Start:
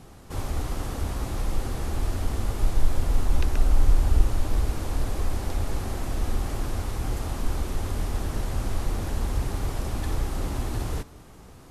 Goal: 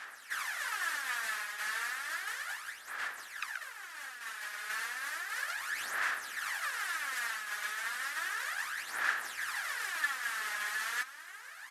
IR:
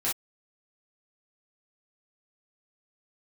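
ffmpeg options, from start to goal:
-filter_complex "[0:a]areverse,acompressor=threshold=0.0501:ratio=6,areverse,highpass=f=1700:t=q:w=6.9,asplit=2[s0][s1];[s1]asetrate=35002,aresample=44100,atempo=1.25992,volume=0.398[s2];[s0][s2]amix=inputs=2:normalize=0,aphaser=in_gain=1:out_gain=1:delay=4.8:decay=0.62:speed=0.33:type=sinusoidal"

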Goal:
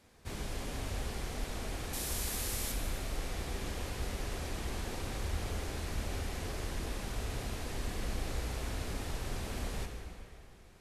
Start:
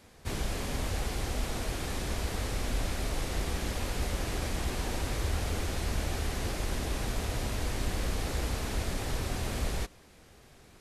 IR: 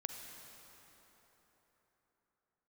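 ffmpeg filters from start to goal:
-filter_complex "[0:a]asettb=1/sr,asplit=3[s0][s1][s2];[s0]atrim=end=1.934[s3];[s1]atrim=start=1.93:end=2.72,asetpts=PTS-STARTPTS,afade=t=in:d=0.004:c=qsin,afade=t=out:st=0.786:d=0.004:c=qsin,aemphasis=mode=production:type=75fm[s4];[s2]atrim=start=2.716[s5];[s3][s4]acrossfade=d=0.004:c1=hsin:c2=qsin[s6];[s6][s5]acrossfade=d=0.004:c1=qsin:c2=hsin[s7];[1:a]atrim=start_sample=2205,asetrate=70560,aresample=44100[s8];[s7][s8]afir=irnorm=-1:irlink=0"

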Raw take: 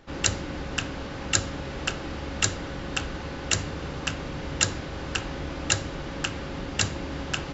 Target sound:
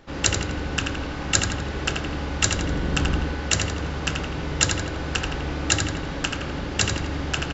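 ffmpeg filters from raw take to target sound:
-filter_complex "[0:a]asettb=1/sr,asplit=3[s0][s1][s2];[s0]atrim=end=2.564[s3];[s1]atrim=start=2.56:end=3.2,asetpts=PTS-STARTPTS,afade=t=in:d=0.004:c=qsin,afade=t=out:st=0.636:d=0.004:c=qsin,lowshelf=f=400:g=7[s4];[s2]atrim=start=3.196[s5];[s3][s4]acrossfade=d=0.004:c1=hsin:c2=qsin[s6];[s6][s5]acrossfade=d=0.004:c1=qsin:c2=hsin,asplit=2[s7][s8];[s8]adelay=83,lowpass=f=5000:p=1,volume=0.631,asplit=2[s9][s10];[s10]adelay=83,lowpass=f=5000:p=1,volume=0.55,asplit=2[s11][s12];[s12]adelay=83,lowpass=f=5000:p=1,volume=0.55,asplit=2[s13][s14];[s14]adelay=83,lowpass=f=5000:p=1,volume=0.55,asplit=2[s15][s16];[s16]adelay=83,lowpass=f=5000:p=1,volume=0.55,asplit=2[s17][s18];[s18]adelay=83,lowpass=f=5000:p=1,volume=0.55,asplit=2[s19][s20];[s20]adelay=83,lowpass=f=5000:p=1,volume=0.55[s21];[s7][s9][s11][s13][s15][s17][s19][s21]amix=inputs=8:normalize=0,volume=1.33"

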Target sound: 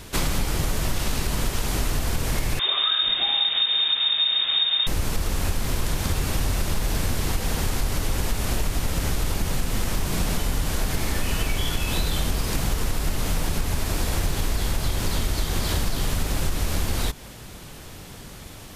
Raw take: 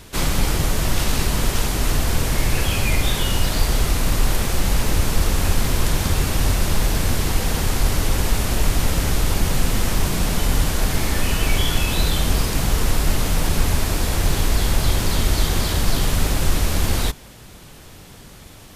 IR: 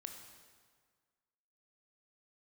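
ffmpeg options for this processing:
-filter_complex "[0:a]asettb=1/sr,asplit=3[s0][s1][s2];[s0]atrim=end=2.594[s3];[s1]atrim=start=2.59:end=4.87,asetpts=PTS-STARTPTS,afade=t=in:d=0.004:c=qsin,afade=t=out:st=2.276:d=0.004:c=qsin,lowpass=f=3100:t=q:w=0.5098,lowpass=f=3100:t=q:w=0.6013,lowpass=f=3100:t=q:w=0.9,lowpass=f=3100:t=q:w=2.563,afreqshift=-3700[s4];[s2]atrim=start=4.866[s5];[s3][s4]acrossfade=d=0.004:c1=hsin:c2=qsin[s6];[s6][s5]acrossfade=d=0.004:c1=qsin:c2=hsin,acompressor=threshold=0.0891:ratio=6,volume=1.19"

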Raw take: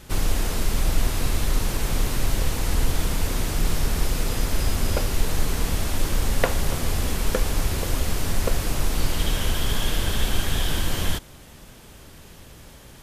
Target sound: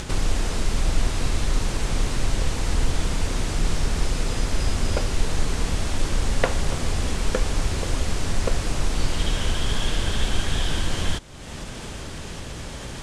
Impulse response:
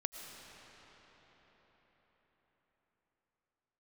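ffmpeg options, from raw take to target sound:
-af "lowpass=f=9000:w=0.5412,lowpass=f=9000:w=1.3066,acompressor=mode=upward:threshold=0.0794:ratio=2.5"

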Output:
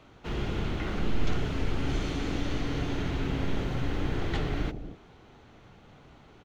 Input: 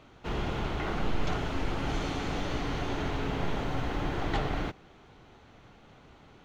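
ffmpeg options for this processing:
-filter_complex "[0:a]acrossover=split=570|1200[s0][s1][s2];[s0]aecho=1:1:67.06|236.2:0.631|0.447[s3];[s1]acompressor=threshold=0.00224:ratio=6[s4];[s3][s4][s2]amix=inputs=3:normalize=0"

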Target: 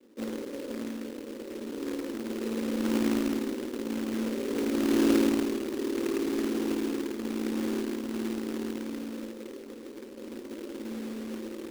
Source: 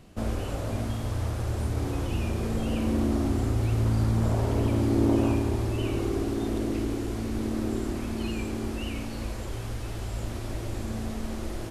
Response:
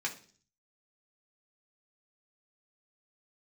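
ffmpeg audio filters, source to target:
-filter_complex "[0:a]asuperpass=centerf=350:order=20:qfactor=1,asplit=2[s0][s1];[1:a]atrim=start_sample=2205,adelay=126[s2];[s1][s2]afir=irnorm=-1:irlink=0,volume=0.0891[s3];[s0][s3]amix=inputs=2:normalize=0,acrusher=bits=2:mode=log:mix=0:aa=0.000001"

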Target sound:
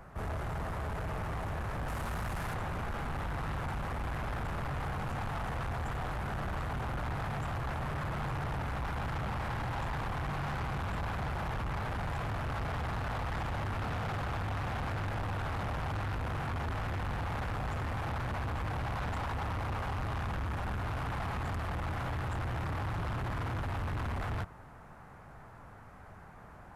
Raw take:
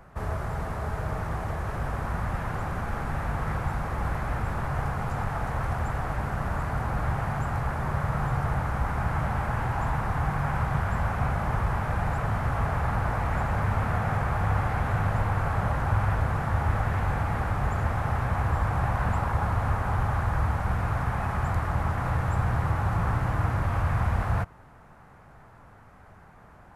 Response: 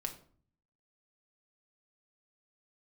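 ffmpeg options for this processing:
-filter_complex "[0:a]asettb=1/sr,asplit=3[s0][s1][s2];[s0]atrim=end=1.884[s3];[s1]atrim=start=1.88:end=2.54,asetpts=PTS-STARTPTS,afade=t=in:d=0.004:c=qsin,afade=t=out:st=0.656:d=0.004:c=qsin,highshelf=f=3900:g=10[s4];[s2]atrim=start=2.536[s5];[s3][s4]acrossfade=d=0.004:c1=hsin:c2=qsin[s6];[s6][s5]acrossfade=d=0.004:c1=qsin:c2=hsin,asoftclip=type=tanh:threshold=0.0224"

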